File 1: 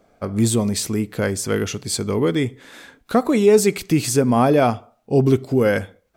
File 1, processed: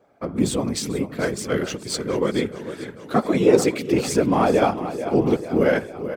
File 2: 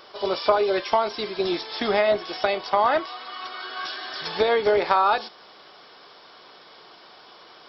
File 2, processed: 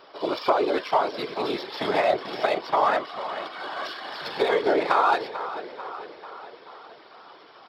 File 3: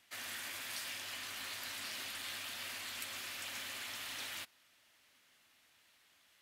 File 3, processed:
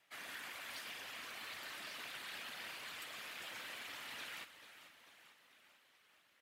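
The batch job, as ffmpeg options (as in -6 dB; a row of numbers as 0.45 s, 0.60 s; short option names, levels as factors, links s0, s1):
-filter_complex "[0:a]aecho=1:1:441|882|1323|1764|2205|2646|3087:0.251|0.148|0.0874|0.0516|0.0304|0.018|0.0106,afftfilt=real='hypot(re,im)*cos(2*PI*random(0))':imag='hypot(re,im)*sin(2*PI*random(1))':win_size=512:overlap=0.75,asplit=2[s0][s1];[s1]adynamicsmooth=sensitivity=7.5:basefreq=3500,volume=1.41[s2];[s0][s2]amix=inputs=2:normalize=0,highpass=f=210:p=1,volume=0.75"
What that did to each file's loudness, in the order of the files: -2.5 LU, -1.5 LU, -5.0 LU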